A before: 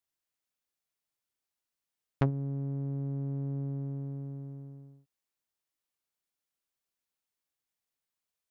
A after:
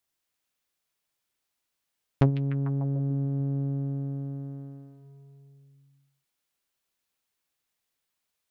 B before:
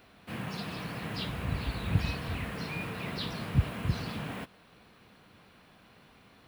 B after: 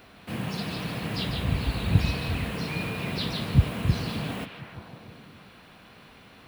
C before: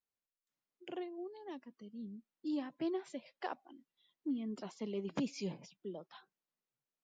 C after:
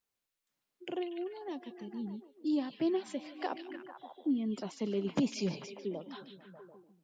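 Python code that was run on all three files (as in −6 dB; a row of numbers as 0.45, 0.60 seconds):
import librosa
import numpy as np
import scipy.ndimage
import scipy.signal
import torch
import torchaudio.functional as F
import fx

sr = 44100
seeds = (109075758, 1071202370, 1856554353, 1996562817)

y = fx.dynamic_eq(x, sr, hz=1500.0, q=0.74, threshold_db=-54.0, ratio=4.0, max_db=-5)
y = fx.echo_stepped(y, sr, ms=148, hz=3200.0, octaves=-0.7, feedback_pct=70, wet_db=-3.0)
y = y * librosa.db_to_amplitude(6.5)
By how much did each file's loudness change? +6.0, +6.0, +6.0 LU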